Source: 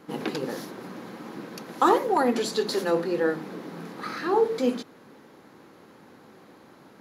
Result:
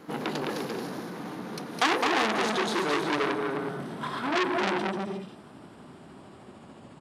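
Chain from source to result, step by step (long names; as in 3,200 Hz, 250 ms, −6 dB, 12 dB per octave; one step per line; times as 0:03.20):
pitch glide at a constant tempo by −6 semitones starting unshifted
bouncing-ball delay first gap 210 ms, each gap 0.65×, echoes 5
saturating transformer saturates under 4,000 Hz
level +2.5 dB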